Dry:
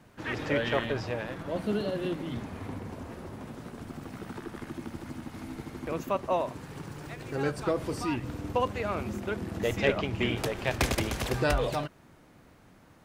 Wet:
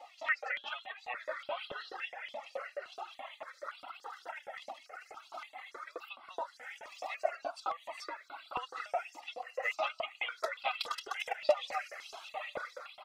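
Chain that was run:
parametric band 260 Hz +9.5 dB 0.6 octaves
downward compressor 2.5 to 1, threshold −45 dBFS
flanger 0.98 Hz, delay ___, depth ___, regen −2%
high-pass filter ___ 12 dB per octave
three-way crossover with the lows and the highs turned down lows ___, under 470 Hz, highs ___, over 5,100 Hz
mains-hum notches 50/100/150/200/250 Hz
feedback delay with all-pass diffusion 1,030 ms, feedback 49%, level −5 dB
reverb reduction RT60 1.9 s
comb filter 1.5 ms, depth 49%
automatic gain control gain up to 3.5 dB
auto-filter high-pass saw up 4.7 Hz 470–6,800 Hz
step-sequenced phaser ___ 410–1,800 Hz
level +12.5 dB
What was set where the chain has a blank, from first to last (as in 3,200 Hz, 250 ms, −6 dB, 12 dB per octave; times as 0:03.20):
2.3 ms, 1.7 ms, 46 Hz, −22 dB, −18 dB, 3.5 Hz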